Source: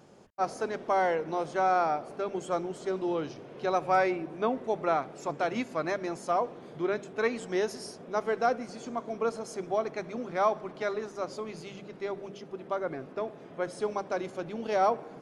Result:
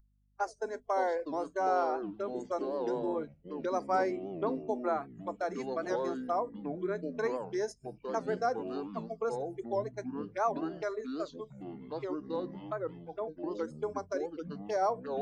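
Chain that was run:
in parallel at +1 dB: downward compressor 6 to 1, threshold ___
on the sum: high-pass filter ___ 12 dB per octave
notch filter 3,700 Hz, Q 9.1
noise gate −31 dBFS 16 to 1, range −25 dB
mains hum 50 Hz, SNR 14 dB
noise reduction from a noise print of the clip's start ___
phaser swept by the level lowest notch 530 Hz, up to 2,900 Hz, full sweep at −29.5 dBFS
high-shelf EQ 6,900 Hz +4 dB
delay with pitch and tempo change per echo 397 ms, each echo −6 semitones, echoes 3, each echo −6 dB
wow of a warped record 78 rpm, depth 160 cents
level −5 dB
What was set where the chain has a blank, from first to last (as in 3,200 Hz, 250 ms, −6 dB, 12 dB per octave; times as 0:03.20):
−36 dBFS, 320 Hz, 23 dB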